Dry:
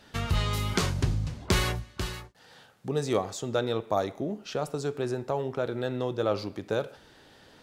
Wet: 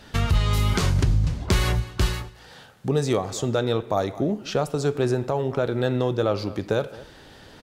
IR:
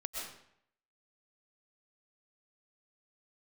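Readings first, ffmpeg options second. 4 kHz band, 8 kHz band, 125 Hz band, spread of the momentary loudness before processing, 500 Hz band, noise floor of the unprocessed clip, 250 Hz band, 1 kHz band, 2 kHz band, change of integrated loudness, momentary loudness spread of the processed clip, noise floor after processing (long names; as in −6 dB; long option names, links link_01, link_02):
+3.5 dB, +3.5 dB, +8.0 dB, 7 LU, +5.0 dB, −56 dBFS, +6.5 dB, +4.0 dB, +3.5 dB, +6.0 dB, 5 LU, −48 dBFS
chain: -filter_complex "[0:a]lowshelf=frequency=100:gain=8.5,asplit=2[link_01][link_02];[link_02]adelay=215.7,volume=-21dB,highshelf=frequency=4000:gain=-4.85[link_03];[link_01][link_03]amix=inputs=2:normalize=0,alimiter=limit=-18dB:level=0:latency=1:release=262,volume=7dB"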